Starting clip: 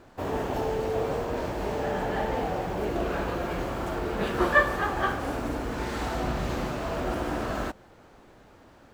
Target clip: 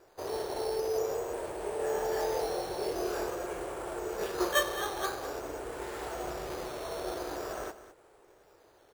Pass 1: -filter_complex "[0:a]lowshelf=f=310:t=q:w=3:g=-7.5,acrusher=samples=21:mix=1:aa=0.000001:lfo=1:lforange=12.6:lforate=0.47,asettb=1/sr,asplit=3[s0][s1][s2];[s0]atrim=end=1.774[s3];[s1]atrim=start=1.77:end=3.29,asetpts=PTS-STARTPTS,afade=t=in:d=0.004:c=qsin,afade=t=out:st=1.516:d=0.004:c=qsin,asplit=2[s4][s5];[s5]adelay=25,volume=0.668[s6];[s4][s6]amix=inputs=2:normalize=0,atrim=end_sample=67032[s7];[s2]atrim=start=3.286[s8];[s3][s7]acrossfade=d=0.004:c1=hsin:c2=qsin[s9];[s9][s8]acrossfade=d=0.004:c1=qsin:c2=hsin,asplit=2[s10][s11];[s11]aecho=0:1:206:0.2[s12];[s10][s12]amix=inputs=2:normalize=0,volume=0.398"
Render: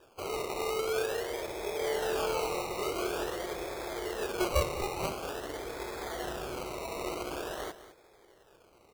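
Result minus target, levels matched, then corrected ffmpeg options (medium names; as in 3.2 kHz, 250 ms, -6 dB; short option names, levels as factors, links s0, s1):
decimation with a swept rate: distortion +10 dB
-filter_complex "[0:a]lowshelf=f=310:t=q:w=3:g=-7.5,acrusher=samples=7:mix=1:aa=0.000001:lfo=1:lforange=4.2:lforate=0.47,asettb=1/sr,asplit=3[s0][s1][s2];[s0]atrim=end=1.774[s3];[s1]atrim=start=1.77:end=3.29,asetpts=PTS-STARTPTS,afade=t=in:d=0.004:c=qsin,afade=t=out:st=1.516:d=0.004:c=qsin,asplit=2[s4][s5];[s5]adelay=25,volume=0.668[s6];[s4][s6]amix=inputs=2:normalize=0,atrim=end_sample=67032[s7];[s2]atrim=start=3.286[s8];[s3][s7]acrossfade=d=0.004:c1=hsin:c2=qsin[s9];[s9][s8]acrossfade=d=0.004:c1=qsin:c2=hsin,asplit=2[s10][s11];[s11]aecho=0:1:206:0.2[s12];[s10][s12]amix=inputs=2:normalize=0,volume=0.398"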